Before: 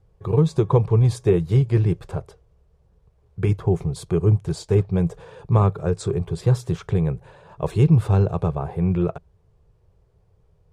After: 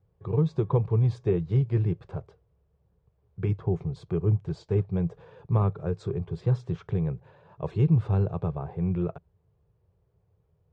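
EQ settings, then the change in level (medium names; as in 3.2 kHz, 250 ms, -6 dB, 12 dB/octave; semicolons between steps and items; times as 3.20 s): high-pass 80 Hz; distance through air 160 m; bass shelf 200 Hz +4 dB; -8.0 dB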